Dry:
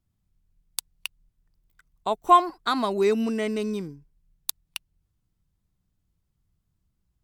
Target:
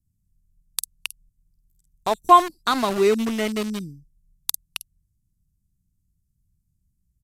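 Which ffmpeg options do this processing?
-filter_complex "[0:a]acrossover=split=280|5800[a][b][c];[b]aeval=exprs='val(0)*gte(abs(val(0)),0.0355)':c=same[d];[c]asplit=2[e][f];[f]adelay=49,volume=-3.5dB[g];[e][g]amix=inputs=2:normalize=0[h];[a][d][h]amix=inputs=3:normalize=0,aresample=32000,aresample=44100,volume=3.5dB"

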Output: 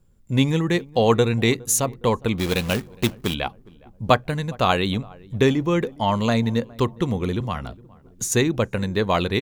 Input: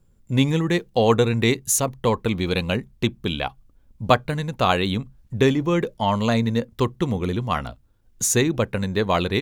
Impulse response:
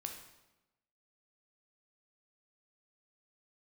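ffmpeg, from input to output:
-filter_complex "[0:a]asplit=3[a][b][c];[a]afade=t=out:st=2.38:d=0.02[d];[b]acrusher=bits=2:mode=log:mix=0:aa=0.000001,afade=t=in:st=2.38:d=0.02,afade=t=out:st=3.33:d=0.02[e];[c]afade=t=in:st=3.33:d=0.02[f];[d][e][f]amix=inputs=3:normalize=0,asettb=1/sr,asplit=3[g][h][i];[g]atrim=end=7.404[j];[h]atrim=start=7.4:end=8.32,asetpts=PTS-STARTPTS,afade=t=in:d=0.004:c=qsin,afade=t=out:st=0.916:d=0.004:c=qsin,acrossover=split=180[k][l];[l]acompressor=threshold=-25dB:ratio=6[m];[k][m]amix=inputs=2:normalize=0[n];[i]atrim=start=8.316[o];[j][n]acrossfade=d=0.004:c1=hsin:c2=qsin[p];[p][o]acrossfade=d=0.004:c1=qsin:c2=hsin,asplit=2[q][r];[r]adelay=412,lowpass=f=1k:p=1,volume=-22.5dB,asplit=2[s][t];[t]adelay=412,lowpass=f=1k:p=1,volume=0.49,asplit=2[u][v];[v]adelay=412,lowpass=f=1k:p=1,volume=0.49[w];[q][s][u][w]amix=inputs=4:normalize=0"

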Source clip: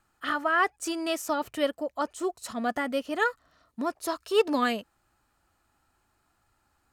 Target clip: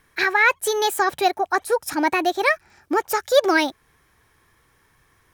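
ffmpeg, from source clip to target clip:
-filter_complex "[0:a]asetrate=57330,aresample=44100,asplit=2[a][b];[b]alimiter=limit=-22.5dB:level=0:latency=1:release=298,volume=1dB[c];[a][c]amix=inputs=2:normalize=0,volume=4dB"

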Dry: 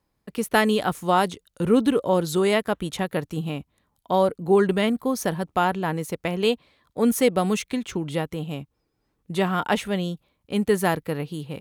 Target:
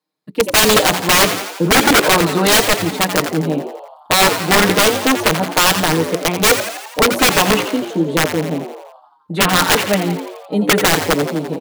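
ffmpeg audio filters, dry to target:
-filter_complex "[0:a]highpass=f=190:w=0.5412,highpass=f=190:w=1.3066,bandreject=f=60:t=h:w=6,bandreject=f=120:t=h:w=6,bandreject=f=180:t=h:w=6,bandreject=f=240:t=h:w=6,bandreject=f=300:t=h:w=6,bandreject=f=360:t=h:w=6,bandreject=f=420:t=h:w=6,afwtdn=0.02,equalizer=f=4k:w=3.8:g=9.5,aecho=1:1:6.5:0.96,asplit=2[a][b];[b]acontrast=54,volume=1dB[c];[a][c]amix=inputs=2:normalize=0,aeval=exprs='(mod(1.78*val(0)+1,2)-1)/1.78':c=same,asplit=2[d][e];[e]asplit=8[f][g][h][i][j][k][l][m];[f]adelay=85,afreqshift=96,volume=-9.5dB[n];[g]adelay=170,afreqshift=192,volume=-13.8dB[o];[h]adelay=255,afreqshift=288,volume=-18.1dB[p];[i]adelay=340,afreqshift=384,volume=-22.4dB[q];[j]adelay=425,afreqshift=480,volume=-26.7dB[r];[k]adelay=510,afreqshift=576,volume=-31dB[s];[l]adelay=595,afreqshift=672,volume=-35.3dB[t];[m]adelay=680,afreqshift=768,volume=-39.6dB[u];[n][o][p][q][r][s][t][u]amix=inputs=8:normalize=0[v];[d][v]amix=inputs=2:normalize=0,volume=-1dB"

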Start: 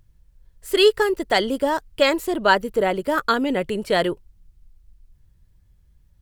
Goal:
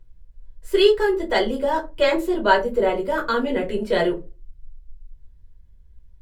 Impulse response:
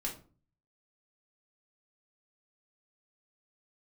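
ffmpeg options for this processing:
-filter_complex "[0:a]highshelf=f=5k:g=-7.5[a];[1:a]atrim=start_sample=2205,asetrate=79380,aresample=44100[b];[a][b]afir=irnorm=-1:irlink=0,volume=2.5dB"

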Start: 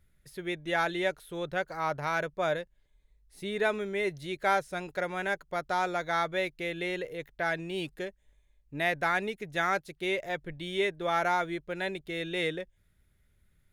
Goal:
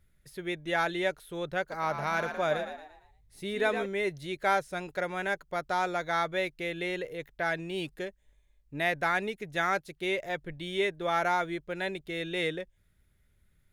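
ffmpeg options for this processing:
-filter_complex "[0:a]asettb=1/sr,asplit=3[a][b][c];[a]atrim=end=1.604[d];[b]atrim=start=1.6:end=3.86,asetpts=PTS-STARTPTS,afade=t=in:d=0.004:c=qsin,afade=t=out:st=2.256:d=0.004:c=qsin,asplit=6[e][f][g][h][i][j];[f]adelay=115,afreqshift=52,volume=-8dB[k];[g]adelay=230,afreqshift=104,volume=-15.7dB[l];[h]adelay=345,afreqshift=156,volume=-23.5dB[m];[i]adelay=460,afreqshift=208,volume=-31.2dB[n];[j]adelay=575,afreqshift=260,volume=-39dB[o];[e][k][l][m][n][o]amix=inputs=6:normalize=0,atrim=end_sample=99666[p];[c]atrim=start=3.856[q];[d][p]acrossfade=d=0.004:c1=hsin:c2=qsin[r];[r][q]acrossfade=d=0.004:c1=qsin:c2=hsin"

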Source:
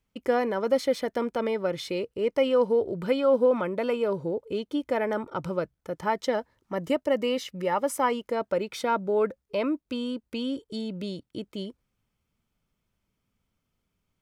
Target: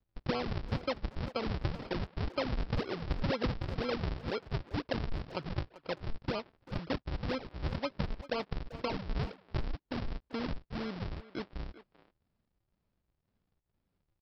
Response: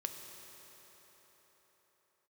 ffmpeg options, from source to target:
-filter_complex "[0:a]acrossover=split=290|640[a][b][c];[a]acompressor=threshold=-41dB:ratio=4[d];[b]acompressor=threshold=-34dB:ratio=4[e];[c]acompressor=threshold=-39dB:ratio=4[f];[d][e][f]amix=inputs=3:normalize=0,aresample=11025,acrusher=samples=28:mix=1:aa=0.000001:lfo=1:lforange=44.8:lforate=2,aresample=44100,asplit=2[g][h];[h]adelay=390,highpass=300,lowpass=3.4k,asoftclip=type=hard:threshold=-27dB,volume=-14dB[i];[g][i]amix=inputs=2:normalize=0,volume=-2dB"

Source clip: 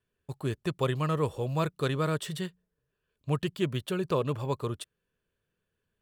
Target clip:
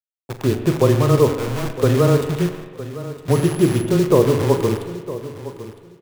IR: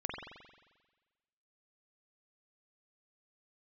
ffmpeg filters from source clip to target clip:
-filter_complex "[0:a]highpass=140,highshelf=f=3.6k:g=-11.5,bandreject=f=50:t=h:w=6,bandreject=f=100:t=h:w=6,bandreject=f=150:t=h:w=6,bandreject=f=200:t=h:w=6,bandreject=f=250:t=h:w=6,bandreject=f=300:t=h:w=6,bandreject=f=350:t=h:w=6,bandreject=f=400:t=h:w=6,acrossover=split=790[a][b];[a]dynaudnorm=f=130:g=5:m=12dB[c];[c][b]amix=inputs=2:normalize=0,asettb=1/sr,asplit=3[d][e][f];[d]atrim=end=1.364[g];[e]atrim=start=1.36:end=1.83,asetpts=PTS-STARTPTS,afade=t=in:d=0.004:c=qsin,afade=t=out:st=0.466:d=0.004:c=qsin,aeval=exprs='(tanh(44.7*val(0)+0.75)-tanh(0.75))/44.7':c=same[h];[f]atrim=start=1.826[i];[g][h]acrossfade=d=0.004:c1=hsin:c2=qsin[j];[j][i]acrossfade=d=0.004:c1=qsin:c2=hsin,acrusher=bits=6:dc=4:mix=0:aa=0.000001,asettb=1/sr,asplit=3[k][l][m];[k]atrim=end=3.314[n];[l]atrim=start=3.31:end=3.86,asetpts=PTS-STARTPTS,afade=t=in:d=0.004:c=qsin,afade=t=out:st=0.546:d=0.004:c=qsin,aeval=exprs='val(0)+0.01*sin(2*PI*11000*n/s)':c=same[o];[m]atrim=start=3.856[p];[n][o]acrossfade=d=0.004:c1=hsin:c2=qsin[q];[q][p]acrossfade=d=0.004:c1=qsin:c2=hsin,afreqshift=-13,aecho=1:1:960|1920:0.178|0.032,asplit=2[r][s];[1:a]atrim=start_sample=2205,adelay=42[t];[s][t]afir=irnorm=-1:irlink=0,volume=-9.5dB[u];[r][u]amix=inputs=2:normalize=0,volume=4dB"

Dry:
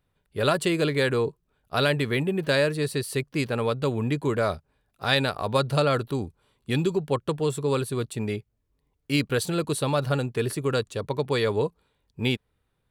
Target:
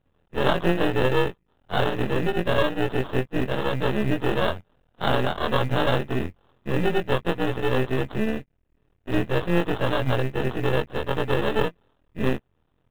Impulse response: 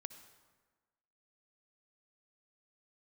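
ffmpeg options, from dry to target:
-filter_complex "[0:a]afftfilt=real='re':imag='-im':win_size=2048:overlap=0.75,highpass=f=41:p=1,tiltshelf=f=1.3k:g=3,asplit=2[a][b];[b]acompressor=threshold=-34dB:ratio=20,volume=2dB[c];[a][c]amix=inputs=2:normalize=0,acrusher=samples=20:mix=1:aa=0.000001,aresample=8000,aeval=exprs='max(val(0),0)':c=same,aresample=44100,acrusher=bits=8:mode=log:mix=0:aa=0.000001,volume=5.5dB"

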